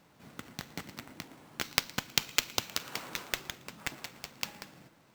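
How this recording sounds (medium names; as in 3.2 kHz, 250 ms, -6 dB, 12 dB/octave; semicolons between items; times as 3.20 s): aliases and images of a low sample rate 10 kHz, jitter 0%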